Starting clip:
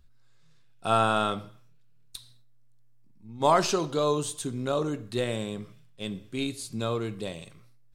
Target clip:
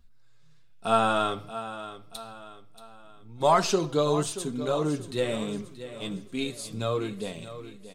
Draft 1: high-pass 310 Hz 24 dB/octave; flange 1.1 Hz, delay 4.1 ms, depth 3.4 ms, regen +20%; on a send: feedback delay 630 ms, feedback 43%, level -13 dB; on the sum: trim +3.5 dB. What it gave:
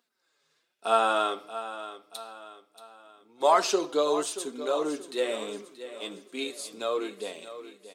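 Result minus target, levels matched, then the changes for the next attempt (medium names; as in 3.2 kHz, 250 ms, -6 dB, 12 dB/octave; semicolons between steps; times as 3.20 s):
250 Hz band -4.5 dB
remove: high-pass 310 Hz 24 dB/octave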